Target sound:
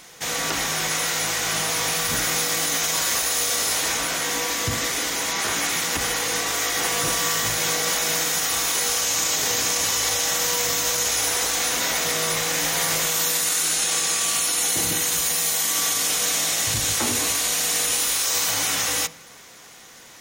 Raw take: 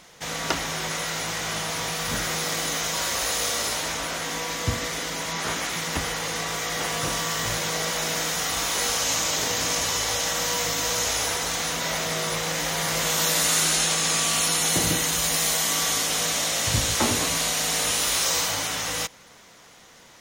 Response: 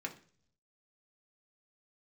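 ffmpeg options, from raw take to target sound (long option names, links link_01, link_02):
-filter_complex "[0:a]highshelf=frequency=6400:gain=8.5,alimiter=limit=-15.5dB:level=0:latency=1,asplit=2[link_01][link_02];[1:a]atrim=start_sample=2205[link_03];[link_02][link_03]afir=irnorm=-1:irlink=0,volume=-5dB[link_04];[link_01][link_04]amix=inputs=2:normalize=0"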